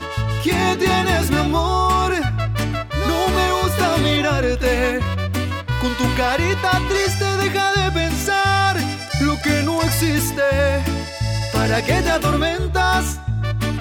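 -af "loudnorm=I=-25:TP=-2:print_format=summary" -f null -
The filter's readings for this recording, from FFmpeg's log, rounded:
Input Integrated:    -18.9 LUFS
Input True Peak:      -4.1 dBTP
Input LRA:             1.4 LU
Input Threshold:     -28.9 LUFS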